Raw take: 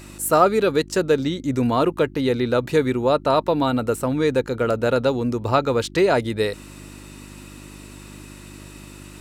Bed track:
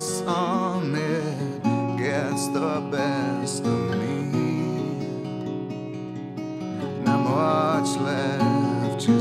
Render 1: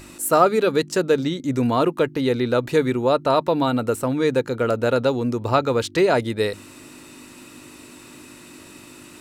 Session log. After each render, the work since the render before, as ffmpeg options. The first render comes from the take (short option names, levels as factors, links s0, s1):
-af "bandreject=f=50:t=h:w=4,bandreject=f=100:t=h:w=4,bandreject=f=150:t=h:w=4,bandreject=f=200:t=h:w=4"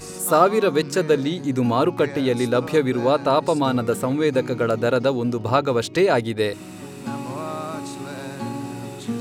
-filter_complex "[1:a]volume=0.376[s0];[0:a][s0]amix=inputs=2:normalize=0"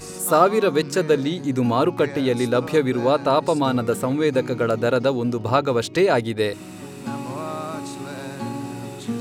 -af anull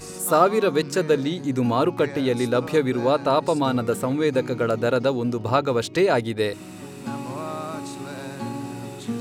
-af "volume=0.841"